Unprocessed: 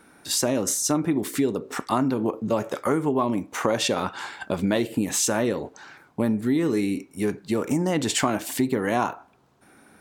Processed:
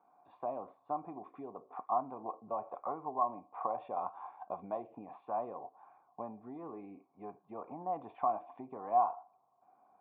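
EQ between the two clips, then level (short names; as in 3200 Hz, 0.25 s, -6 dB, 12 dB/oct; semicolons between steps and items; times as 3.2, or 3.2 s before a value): vocal tract filter a; HPF 96 Hz; +1.0 dB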